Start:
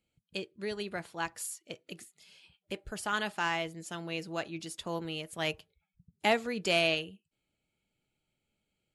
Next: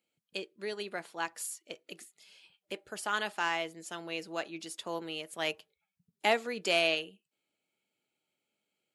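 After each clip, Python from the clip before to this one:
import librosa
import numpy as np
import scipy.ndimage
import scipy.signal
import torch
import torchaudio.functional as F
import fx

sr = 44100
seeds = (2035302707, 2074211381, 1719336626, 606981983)

y = scipy.signal.sosfilt(scipy.signal.butter(2, 290.0, 'highpass', fs=sr, output='sos'), x)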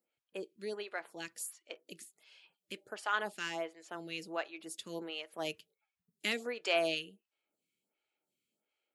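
y = fx.stagger_phaser(x, sr, hz=1.4)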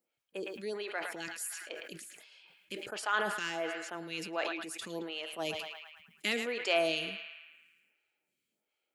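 y = fx.echo_banded(x, sr, ms=110, feedback_pct=70, hz=1800.0, wet_db=-12.0)
y = fx.sustainer(y, sr, db_per_s=44.0)
y = y * 10.0 ** (1.5 / 20.0)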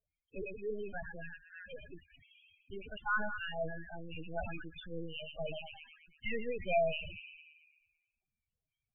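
y = fx.lpc_vocoder(x, sr, seeds[0], excitation='pitch_kept', order=8)
y = fx.spec_topn(y, sr, count=8)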